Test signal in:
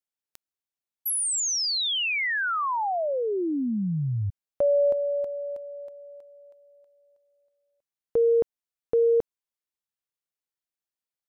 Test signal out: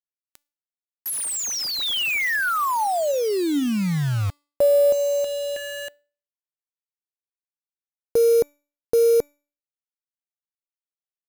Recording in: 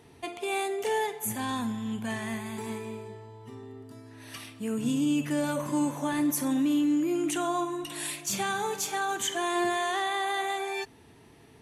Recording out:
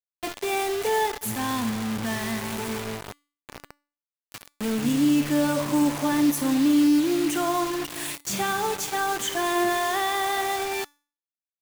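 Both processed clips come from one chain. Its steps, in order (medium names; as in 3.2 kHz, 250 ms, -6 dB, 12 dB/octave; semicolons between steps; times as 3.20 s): treble shelf 3.1 kHz -5 dB; word length cut 6-bit, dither none; feedback comb 290 Hz, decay 0.4 s, harmonics all, mix 40%; trim +8.5 dB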